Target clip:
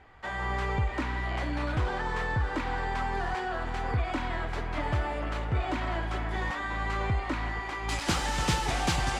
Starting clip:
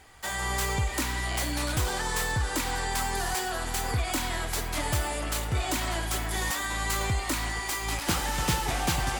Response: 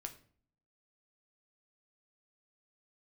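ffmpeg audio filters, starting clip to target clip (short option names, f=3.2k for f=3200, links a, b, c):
-af "asetnsamples=n=441:p=0,asendcmd='7.89 lowpass f 7000',lowpass=2.1k"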